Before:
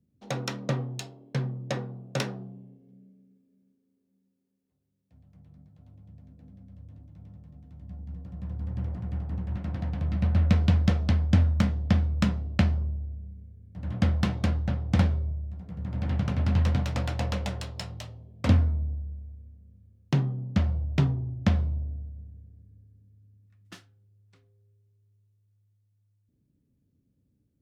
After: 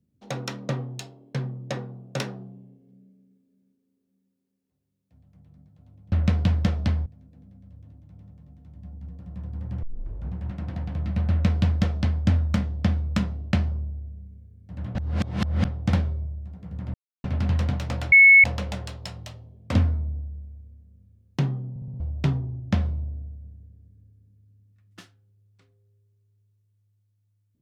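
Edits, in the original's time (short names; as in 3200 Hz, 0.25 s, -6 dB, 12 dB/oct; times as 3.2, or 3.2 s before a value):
8.89 tape start 0.52 s
10.35–11.29 copy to 6.12
14.01–14.71 reverse
16–16.3 mute
17.18 add tone 2200 Hz -8.5 dBFS 0.32 s
20.44 stutter in place 0.06 s, 5 plays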